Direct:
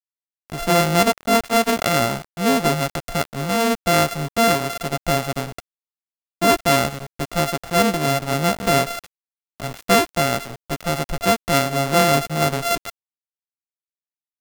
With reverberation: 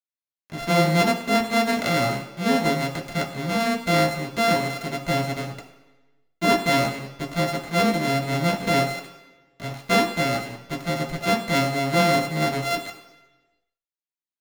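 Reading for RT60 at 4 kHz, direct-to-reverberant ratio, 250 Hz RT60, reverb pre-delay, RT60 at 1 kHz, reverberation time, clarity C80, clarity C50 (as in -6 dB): 1.1 s, -0.5 dB, 1.0 s, 3 ms, 1.0 s, 1.1 s, 11.0 dB, 9.0 dB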